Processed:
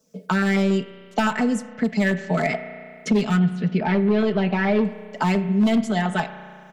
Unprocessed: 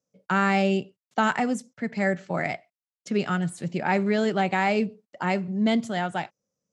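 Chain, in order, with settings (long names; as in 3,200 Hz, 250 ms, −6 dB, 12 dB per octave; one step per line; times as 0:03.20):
comb filter 4.6 ms, depth 79%
automatic gain control gain up to 8.5 dB
hard clipping −10 dBFS, distortion −14 dB
auto-filter notch saw down 7.1 Hz 660–2,400 Hz
0:03.39–0:04.85: high-frequency loss of the air 280 metres
spring reverb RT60 1.2 s, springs 33 ms, chirp 70 ms, DRR 12.5 dB
multiband upward and downward compressor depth 70%
level −3 dB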